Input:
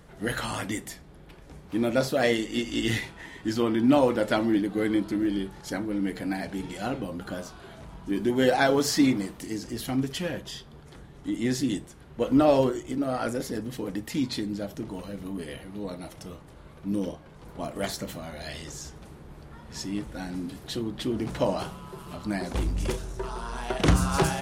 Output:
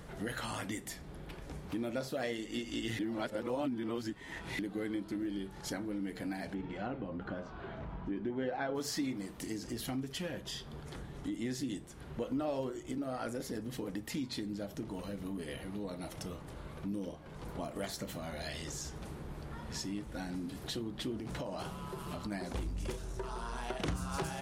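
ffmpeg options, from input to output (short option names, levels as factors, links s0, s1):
-filter_complex "[0:a]asplit=3[s0][s1][s2];[s0]afade=t=out:st=6.53:d=0.02[s3];[s1]lowpass=2200,afade=t=in:st=6.53:d=0.02,afade=t=out:st=8.74:d=0.02[s4];[s2]afade=t=in:st=8.74:d=0.02[s5];[s3][s4][s5]amix=inputs=3:normalize=0,asettb=1/sr,asplit=3[s6][s7][s8];[s6]atrim=end=21.184[s9];[s7]atrim=start=21.18:end=22.32,asetpts=PTS-STARTPTS,afade=t=in:d=0.004:c=qsin,afade=t=out:st=1.136:d=0.004:c=qsin,acompressor=threshold=0.0316:ratio=6:attack=3.2:release=140:knee=1:detection=peak[s10];[s8]atrim=start=22.316[s11];[s9][s10]acrossfade=d=0.004:c1=hsin:c2=qsin[s12];[s12][s11]acrossfade=d=0.004:c1=qsin:c2=hsin,asplit=3[s13][s14][s15];[s13]atrim=end=2.992[s16];[s14]atrim=start=2.988:end=4.592,asetpts=PTS-STARTPTS,areverse[s17];[s15]atrim=start=4.588[s18];[s16][s17]acrossfade=d=0.004:c1=hsin:c2=hsin[s19];[s19][s18]acrossfade=d=0.004:c1=hsin:c2=hsin,acompressor=threshold=0.00794:ratio=3,volume=1.33"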